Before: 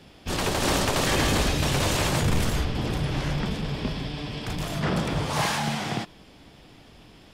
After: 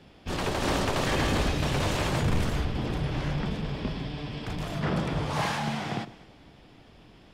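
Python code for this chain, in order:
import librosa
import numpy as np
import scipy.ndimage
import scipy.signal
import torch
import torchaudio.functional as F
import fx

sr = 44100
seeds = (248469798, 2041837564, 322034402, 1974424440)

y = fx.high_shelf(x, sr, hz=5200.0, db=-10.0)
y = fx.echo_alternate(y, sr, ms=104, hz=850.0, feedback_pct=56, wet_db=-14.0)
y = y * 10.0 ** (-2.5 / 20.0)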